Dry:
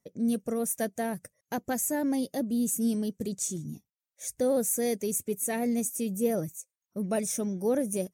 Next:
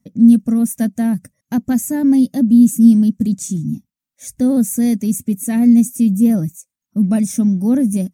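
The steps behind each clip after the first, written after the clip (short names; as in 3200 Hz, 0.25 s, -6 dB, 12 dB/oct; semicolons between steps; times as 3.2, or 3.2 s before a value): resonant low shelf 320 Hz +8.5 dB, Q 3; gain +4.5 dB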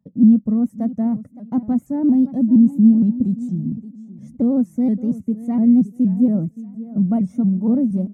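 polynomial smoothing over 65 samples; feedback echo 0.57 s, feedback 27%, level -16 dB; shaped vibrato saw up 4.3 Hz, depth 160 cents; gain -3 dB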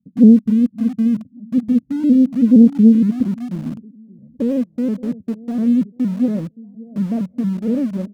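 low-pass sweep 250 Hz -> 520 Hz, 2.58–4.29; in parallel at -9 dB: sample gate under -20 dBFS; on the sum: Doppler distortion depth 0.23 ms; gain -6.5 dB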